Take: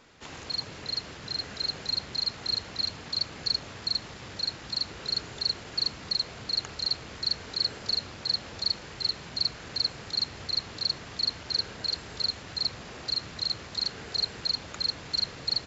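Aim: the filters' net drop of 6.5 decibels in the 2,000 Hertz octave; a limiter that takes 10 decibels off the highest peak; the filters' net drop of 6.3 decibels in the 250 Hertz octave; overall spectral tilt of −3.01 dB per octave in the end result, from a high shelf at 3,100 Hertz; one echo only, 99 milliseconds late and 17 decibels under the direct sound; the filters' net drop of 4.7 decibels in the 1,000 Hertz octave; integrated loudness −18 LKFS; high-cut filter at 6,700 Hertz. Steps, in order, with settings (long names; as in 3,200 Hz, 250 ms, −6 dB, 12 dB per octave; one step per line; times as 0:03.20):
low-pass filter 6,700 Hz
parametric band 250 Hz −9 dB
parametric band 1,000 Hz −3.5 dB
parametric band 2,000 Hz −5.5 dB
high-shelf EQ 3,100 Hz −4.5 dB
brickwall limiter −29 dBFS
single-tap delay 99 ms −17 dB
level +21 dB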